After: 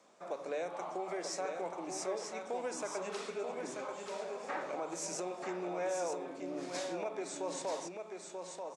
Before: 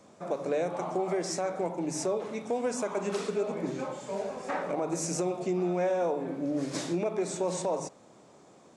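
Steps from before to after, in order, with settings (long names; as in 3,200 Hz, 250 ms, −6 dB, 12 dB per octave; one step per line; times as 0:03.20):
meter weighting curve A
on a send: single-tap delay 936 ms −5.5 dB
on the sum: level −5.5 dB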